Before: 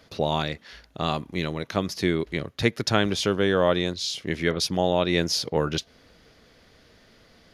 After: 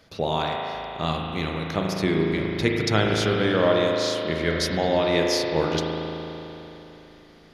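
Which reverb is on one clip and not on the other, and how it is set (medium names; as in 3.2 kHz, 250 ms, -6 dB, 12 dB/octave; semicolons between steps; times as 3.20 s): spring tank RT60 3.4 s, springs 37 ms, chirp 75 ms, DRR -1 dB; trim -1.5 dB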